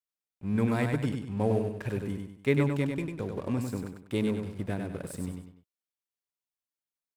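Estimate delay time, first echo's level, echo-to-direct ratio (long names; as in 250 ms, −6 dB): 98 ms, −5.0 dB, −4.5 dB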